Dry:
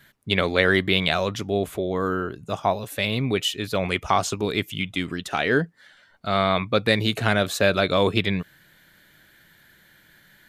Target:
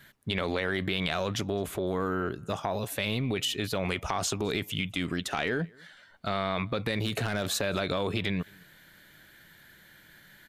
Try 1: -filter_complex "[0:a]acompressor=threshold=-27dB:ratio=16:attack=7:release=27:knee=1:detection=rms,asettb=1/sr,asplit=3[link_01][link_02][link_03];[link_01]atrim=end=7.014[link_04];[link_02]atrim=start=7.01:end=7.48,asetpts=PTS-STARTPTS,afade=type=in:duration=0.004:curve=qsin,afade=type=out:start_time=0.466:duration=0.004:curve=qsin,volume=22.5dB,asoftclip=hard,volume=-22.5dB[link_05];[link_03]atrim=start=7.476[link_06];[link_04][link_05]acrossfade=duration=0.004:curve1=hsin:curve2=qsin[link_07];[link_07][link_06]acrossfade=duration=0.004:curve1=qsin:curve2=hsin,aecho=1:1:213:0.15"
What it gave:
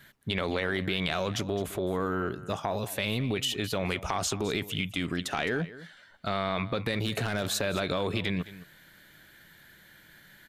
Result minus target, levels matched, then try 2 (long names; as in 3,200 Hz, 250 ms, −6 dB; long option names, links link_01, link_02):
echo-to-direct +11 dB
-filter_complex "[0:a]acompressor=threshold=-27dB:ratio=16:attack=7:release=27:knee=1:detection=rms,asettb=1/sr,asplit=3[link_01][link_02][link_03];[link_01]atrim=end=7.014[link_04];[link_02]atrim=start=7.01:end=7.48,asetpts=PTS-STARTPTS,afade=type=in:duration=0.004:curve=qsin,afade=type=out:start_time=0.466:duration=0.004:curve=qsin,volume=22.5dB,asoftclip=hard,volume=-22.5dB[link_05];[link_03]atrim=start=7.476[link_06];[link_04][link_05]acrossfade=duration=0.004:curve1=hsin:curve2=qsin[link_07];[link_07][link_06]acrossfade=duration=0.004:curve1=qsin:curve2=hsin,aecho=1:1:213:0.0422"